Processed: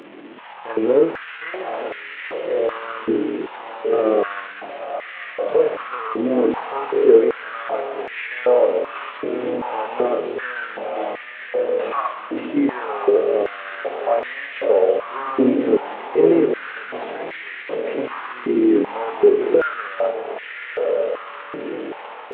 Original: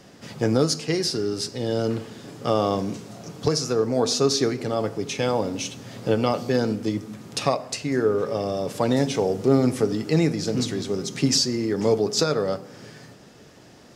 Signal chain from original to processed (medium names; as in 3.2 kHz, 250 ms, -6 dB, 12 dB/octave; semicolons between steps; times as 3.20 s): one-bit delta coder 16 kbps, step -32.5 dBFS; granular stretch 1.6×, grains 129 ms; level rider gain up to 5.5 dB; on a send: echo that smears into a reverb 1077 ms, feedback 44%, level -5 dB; on the sum: step-sequenced high-pass 2.6 Hz 310–1900 Hz; trim -4 dB